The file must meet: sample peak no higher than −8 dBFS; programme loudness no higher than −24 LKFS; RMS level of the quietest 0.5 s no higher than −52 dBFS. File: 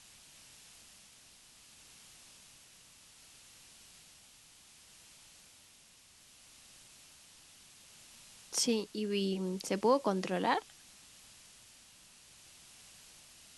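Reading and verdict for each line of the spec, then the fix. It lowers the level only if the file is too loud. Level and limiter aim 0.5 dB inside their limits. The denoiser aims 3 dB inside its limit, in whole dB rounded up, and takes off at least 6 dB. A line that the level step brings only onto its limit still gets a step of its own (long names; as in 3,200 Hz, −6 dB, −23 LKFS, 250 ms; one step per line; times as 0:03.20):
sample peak −16.0 dBFS: in spec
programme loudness −33.0 LKFS: in spec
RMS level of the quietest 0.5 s −61 dBFS: in spec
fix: no processing needed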